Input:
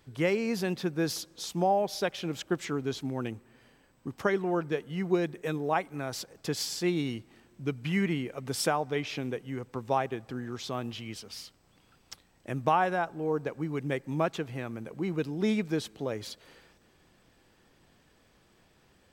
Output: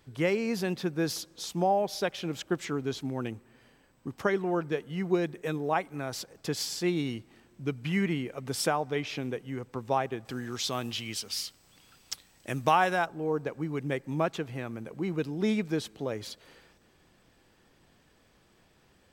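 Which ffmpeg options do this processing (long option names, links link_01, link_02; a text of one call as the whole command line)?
ffmpeg -i in.wav -filter_complex "[0:a]asettb=1/sr,asplit=3[link_01][link_02][link_03];[link_01]atrim=end=10.254[link_04];[link_02]atrim=start=10.25:end=13.06,asetpts=PTS-STARTPTS,afade=type=in:duration=0.004:curve=qsin,afade=type=out:start_time=2.806:duration=0.004:curve=qsin,highshelf=frequency=2200:gain=11[link_05];[link_03]atrim=start=13.056[link_06];[link_04][link_05]acrossfade=duration=0.004:curve1=hsin:curve2=qsin[link_07];[link_07][link_06]acrossfade=duration=0.004:curve1=qsin:curve2=hsin" out.wav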